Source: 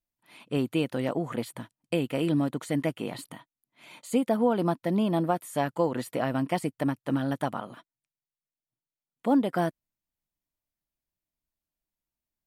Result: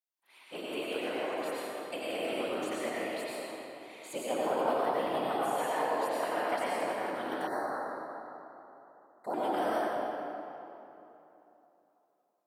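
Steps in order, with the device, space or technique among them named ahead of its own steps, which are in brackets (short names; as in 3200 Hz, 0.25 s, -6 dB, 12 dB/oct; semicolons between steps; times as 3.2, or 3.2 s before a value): whispering ghost (whisperiser; HPF 560 Hz 12 dB/oct; reverb RT60 3.2 s, pre-delay 83 ms, DRR -7.5 dB); 7.47–9.34 elliptic band-stop 2000–4100 Hz, stop band 40 dB; gain -7 dB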